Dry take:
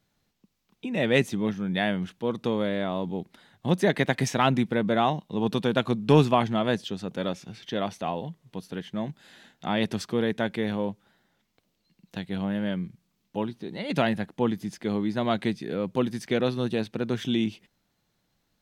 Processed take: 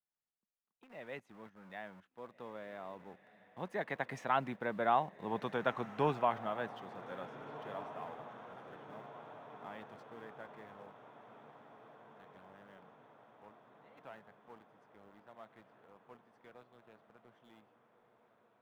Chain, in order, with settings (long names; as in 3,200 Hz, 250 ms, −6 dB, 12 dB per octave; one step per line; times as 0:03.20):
source passing by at 0:05.28, 8 m/s, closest 6.8 metres
in parallel at −7.5 dB: bit reduction 7 bits
on the sum: three-way crossover with the lows and the highs turned down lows −14 dB, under 600 Hz, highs −18 dB, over 2,000 Hz
feedback delay with all-pass diffusion 1,670 ms, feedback 61%, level −14 dB
level −5.5 dB